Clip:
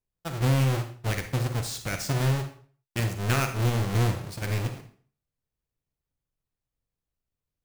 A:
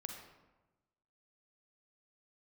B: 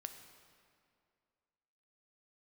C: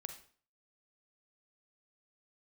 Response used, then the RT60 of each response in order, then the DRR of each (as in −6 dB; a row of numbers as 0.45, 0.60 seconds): C; 1.1, 2.3, 0.45 seconds; 2.5, 6.5, 6.0 decibels